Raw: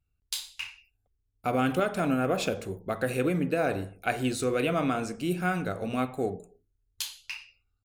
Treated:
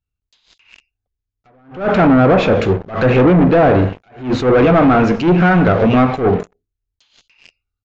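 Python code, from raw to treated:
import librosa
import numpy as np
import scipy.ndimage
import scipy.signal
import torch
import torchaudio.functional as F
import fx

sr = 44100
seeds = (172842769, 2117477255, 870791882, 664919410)

y = fx.leveller(x, sr, passes=5)
y = fx.env_lowpass_down(y, sr, base_hz=1400.0, full_db=-13.5)
y = scipy.signal.sosfilt(scipy.signal.ellip(4, 1.0, 40, 6900.0, 'lowpass', fs=sr, output='sos'), y)
y = fx.attack_slew(y, sr, db_per_s=150.0)
y = y * 10.0 ** (7.0 / 20.0)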